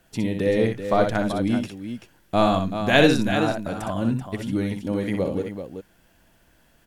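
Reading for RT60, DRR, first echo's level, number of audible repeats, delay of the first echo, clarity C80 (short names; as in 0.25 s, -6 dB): none, none, -6.5 dB, 2, 62 ms, none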